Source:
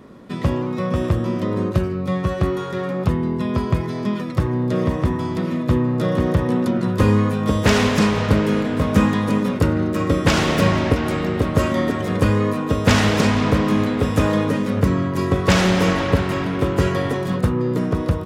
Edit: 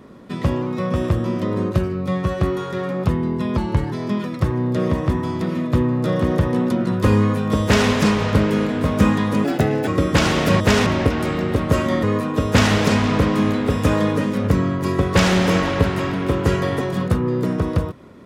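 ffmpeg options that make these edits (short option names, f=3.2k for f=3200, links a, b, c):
-filter_complex "[0:a]asplit=8[a][b][c][d][e][f][g][h];[a]atrim=end=3.574[i];[b]atrim=start=3.57:end=3.88,asetpts=PTS-STARTPTS,asetrate=38808,aresample=44100,atrim=end_sample=15535,asetpts=PTS-STARTPTS[j];[c]atrim=start=3.876:end=9.404[k];[d]atrim=start=9.4:end=9.99,asetpts=PTS-STARTPTS,asetrate=60417,aresample=44100[l];[e]atrim=start=9.986:end=10.722[m];[f]atrim=start=7.588:end=7.852[n];[g]atrim=start=10.718:end=11.892[o];[h]atrim=start=12.358[p];[i][j]acrossfade=d=0.004:c1=hsin:c2=hsin[q];[q][k]acrossfade=d=0.004:c1=hsin:c2=hsin[r];[r][l]acrossfade=d=0.004:c1=hsin:c2=hsin[s];[s][m]acrossfade=d=0.004:c1=hsin:c2=hsin[t];[t][n]acrossfade=d=0.004:c1=hsin:c2=hsin[u];[u][o]acrossfade=d=0.004:c1=hsin:c2=hsin[v];[v][p]acrossfade=d=0.004:c1=hsin:c2=hsin"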